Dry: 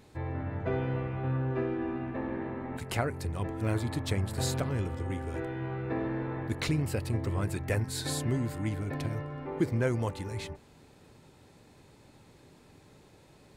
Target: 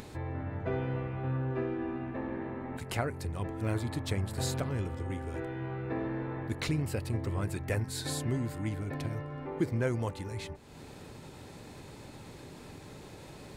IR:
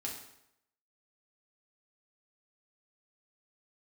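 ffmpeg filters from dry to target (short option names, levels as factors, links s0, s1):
-af "acompressor=mode=upward:threshold=0.02:ratio=2.5,volume=0.794"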